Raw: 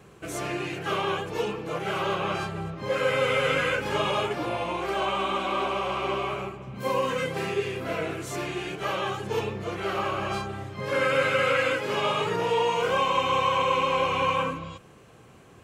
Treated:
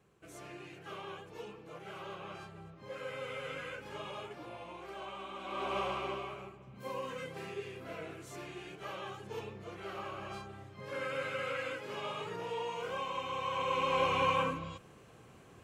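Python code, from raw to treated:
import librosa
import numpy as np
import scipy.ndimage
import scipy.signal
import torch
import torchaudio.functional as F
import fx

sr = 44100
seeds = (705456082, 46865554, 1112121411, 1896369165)

y = fx.gain(x, sr, db=fx.line((5.35, -17.5), (5.79, -5.5), (6.35, -14.0), (13.36, -14.0), (14.03, -5.0)))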